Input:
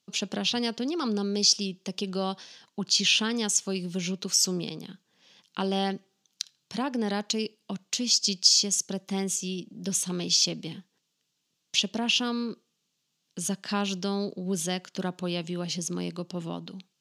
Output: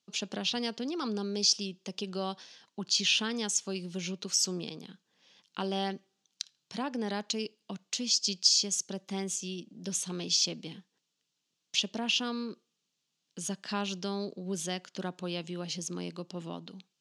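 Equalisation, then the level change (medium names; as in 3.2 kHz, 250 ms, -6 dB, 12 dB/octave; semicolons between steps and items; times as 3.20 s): low-pass 9.3 kHz 12 dB/octave; bass shelf 120 Hz -7.5 dB; -4.0 dB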